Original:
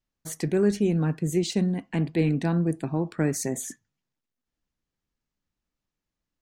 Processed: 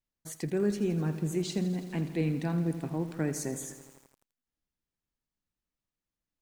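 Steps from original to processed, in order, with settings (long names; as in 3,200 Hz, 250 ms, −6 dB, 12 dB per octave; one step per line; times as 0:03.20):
feedback echo at a low word length 83 ms, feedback 80%, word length 7 bits, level −13 dB
level −6.5 dB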